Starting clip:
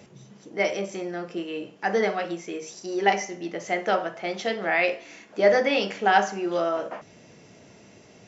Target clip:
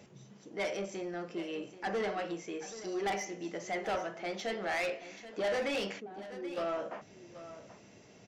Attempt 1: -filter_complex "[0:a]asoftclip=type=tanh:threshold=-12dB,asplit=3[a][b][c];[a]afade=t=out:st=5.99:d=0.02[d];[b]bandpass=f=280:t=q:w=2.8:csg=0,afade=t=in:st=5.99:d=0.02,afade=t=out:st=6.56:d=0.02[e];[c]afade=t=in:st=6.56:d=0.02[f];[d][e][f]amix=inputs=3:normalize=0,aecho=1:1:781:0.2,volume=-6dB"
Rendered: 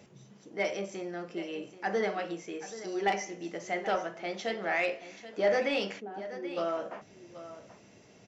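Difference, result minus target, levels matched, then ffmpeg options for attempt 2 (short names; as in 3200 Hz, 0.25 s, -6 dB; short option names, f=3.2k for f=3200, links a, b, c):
soft clip: distortion -11 dB
-filter_complex "[0:a]asoftclip=type=tanh:threshold=-23dB,asplit=3[a][b][c];[a]afade=t=out:st=5.99:d=0.02[d];[b]bandpass=f=280:t=q:w=2.8:csg=0,afade=t=in:st=5.99:d=0.02,afade=t=out:st=6.56:d=0.02[e];[c]afade=t=in:st=6.56:d=0.02[f];[d][e][f]amix=inputs=3:normalize=0,aecho=1:1:781:0.2,volume=-6dB"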